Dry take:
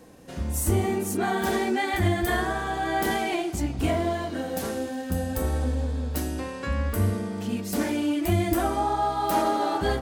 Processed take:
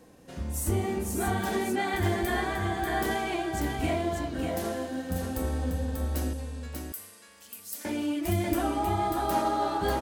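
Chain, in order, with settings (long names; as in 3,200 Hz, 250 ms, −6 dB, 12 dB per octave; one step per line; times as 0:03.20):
0:06.33–0:07.85: first difference
single-tap delay 590 ms −4.5 dB
level −4.5 dB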